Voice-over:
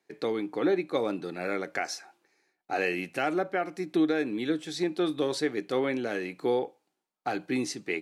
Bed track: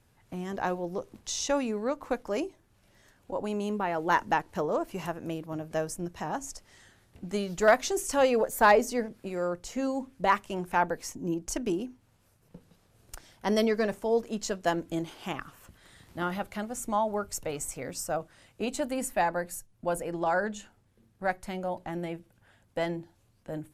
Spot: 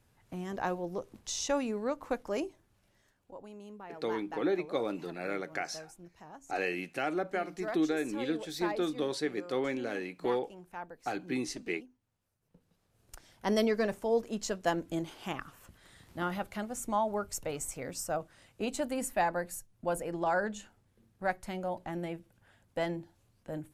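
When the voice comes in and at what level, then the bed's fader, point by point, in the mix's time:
3.80 s, -4.5 dB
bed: 2.61 s -3 dB
3.51 s -17 dB
12.30 s -17 dB
13.43 s -2.5 dB

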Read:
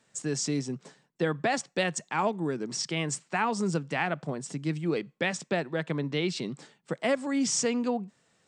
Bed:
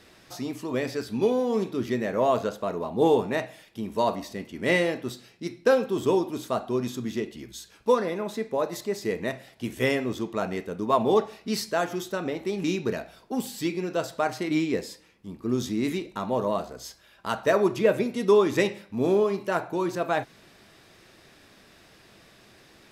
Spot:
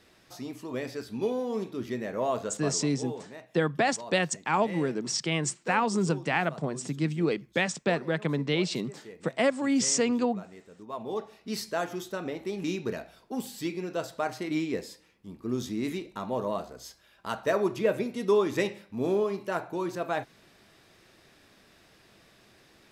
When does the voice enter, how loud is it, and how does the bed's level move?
2.35 s, +2.0 dB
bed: 2.68 s -6 dB
2.92 s -18 dB
10.79 s -18 dB
11.59 s -4.5 dB

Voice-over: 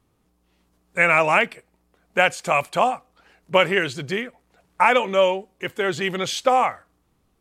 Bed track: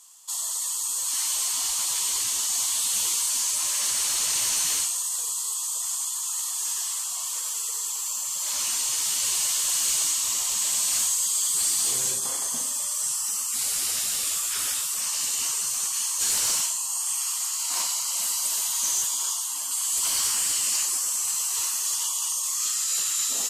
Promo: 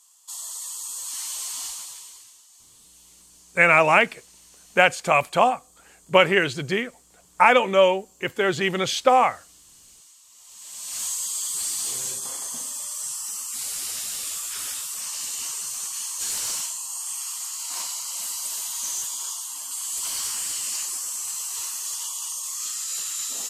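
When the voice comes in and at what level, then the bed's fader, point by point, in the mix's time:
2.60 s, +1.0 dB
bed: 1.65 s -5.5 dB
2.44 s -27.5 dB
10.29 s -27.5 dB
11.07 s -4 dB

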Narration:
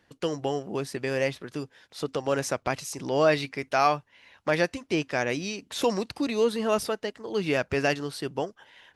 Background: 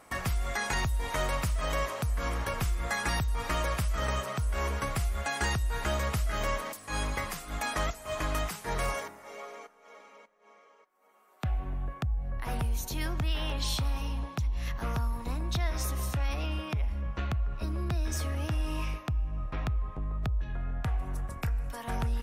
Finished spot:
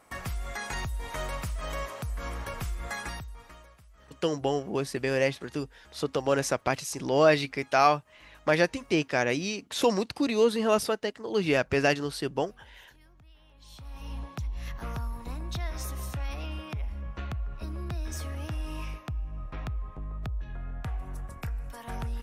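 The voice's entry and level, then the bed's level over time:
4.00 s, +1.0 dB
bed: 2.99 s -4 dB
3.77 s -26.5 dB
13.52 s -26.5 dB
14.14 s -3.5 dB

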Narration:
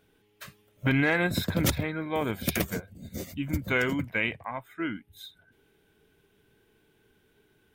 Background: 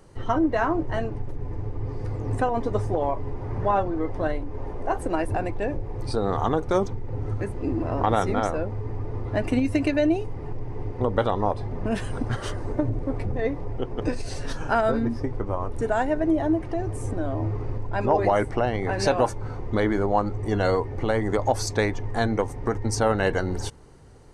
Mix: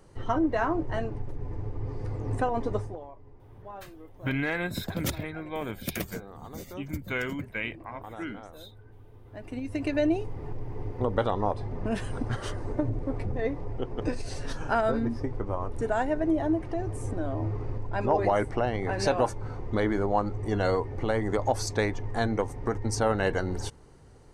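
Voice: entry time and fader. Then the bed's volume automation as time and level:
3.40 s, -5.0 dB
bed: 2.74 s -3.5 dB
3.08 s -21 dB
9.23 s -21 dB
9.99 s -3.5 dB

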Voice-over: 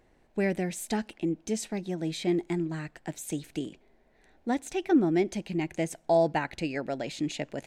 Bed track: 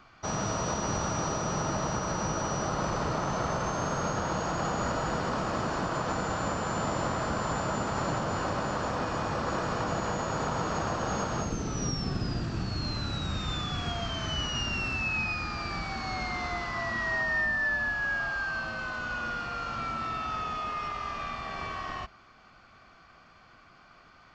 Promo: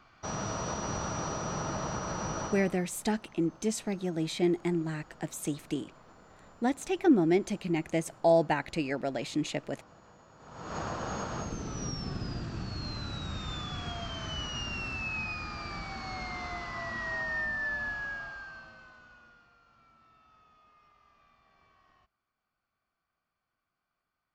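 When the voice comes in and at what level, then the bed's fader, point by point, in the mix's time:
2.15 s, 0.0 dB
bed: 2.44 s -4 dB
2.89 s -26 dB
10.37 s -26 dB
10.77 s -5 dB
17.93 s -5 dB
19.60 s -29.5 dB

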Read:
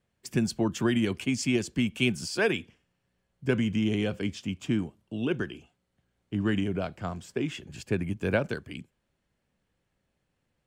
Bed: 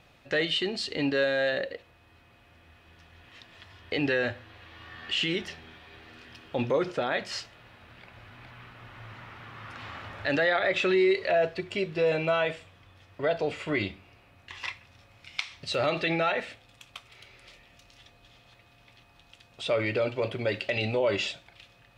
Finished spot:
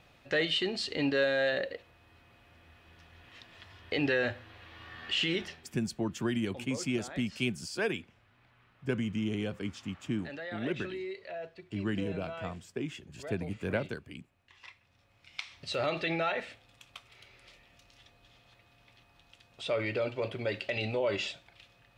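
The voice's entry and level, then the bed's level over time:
5.40 s, -6.0 dB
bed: 5.44 s -2 dB
5.80 s -16.5 dB
14.61 s -16.5 dB
15.63 s -4.5 dB

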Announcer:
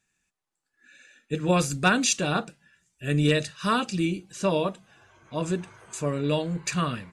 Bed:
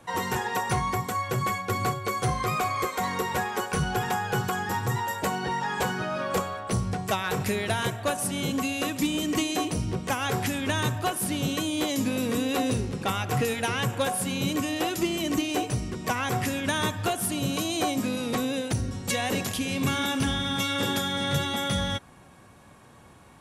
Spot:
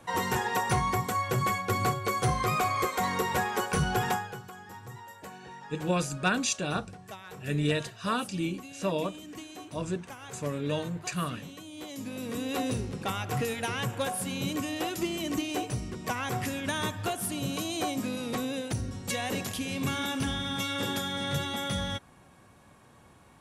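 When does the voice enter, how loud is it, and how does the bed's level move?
4.40 s, -5.5 dB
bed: 4.12 s -0.5 dB
4.40 s -17 dB
11.64 s -17 dB
12.58 s -4.5 dB

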